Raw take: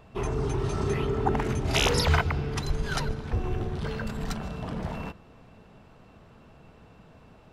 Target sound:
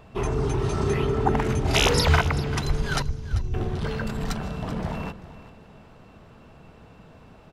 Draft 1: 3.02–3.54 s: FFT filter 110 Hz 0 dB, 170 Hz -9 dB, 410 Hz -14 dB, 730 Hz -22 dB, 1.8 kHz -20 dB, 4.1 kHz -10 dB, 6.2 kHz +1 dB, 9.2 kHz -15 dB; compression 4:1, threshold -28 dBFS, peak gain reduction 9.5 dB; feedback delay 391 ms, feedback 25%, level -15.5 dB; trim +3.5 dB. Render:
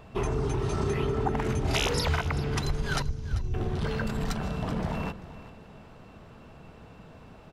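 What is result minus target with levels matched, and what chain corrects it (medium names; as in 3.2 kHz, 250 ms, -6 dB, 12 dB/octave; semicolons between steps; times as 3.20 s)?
compression: peak gain reduction +9.5 dB
3.02–3.54 s: FFT filter 110 Hz 0 dB, 170 Hz -9 dB, 410 Hz -14 dB, 730 Hz -22 dB, 1.8 kHz -20 dB, 4.1 kHz -10 dB, 6.2 kHz +1 dB, 9.2 kHz -15 dB; feedback delay 391 ms, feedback 25%, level -15.5 dB; trim +3.5 dB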